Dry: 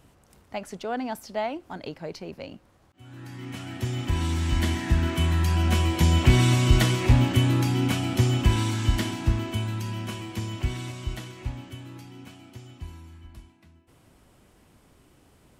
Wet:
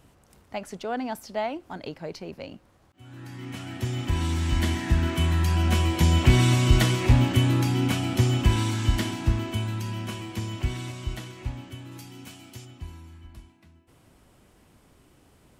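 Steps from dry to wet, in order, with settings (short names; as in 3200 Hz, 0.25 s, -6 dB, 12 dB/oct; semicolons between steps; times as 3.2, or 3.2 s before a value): 11.91–12.64 high shelf 4800 Hz -> 2900 Hz +11 dB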